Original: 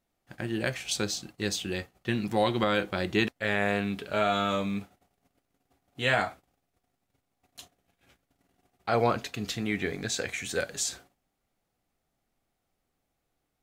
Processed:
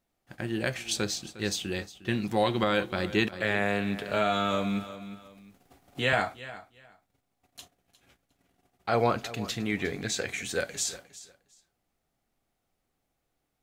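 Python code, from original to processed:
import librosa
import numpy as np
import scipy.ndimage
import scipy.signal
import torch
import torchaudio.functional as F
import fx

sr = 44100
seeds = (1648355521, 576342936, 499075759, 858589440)

y = fx.echo_feedback(x, sr, ms=357, feedback_pct=19, wet_db=-16.5)
y = fx.band_squash(y, sr, depth_pct=40, at=(3.32, 6.13))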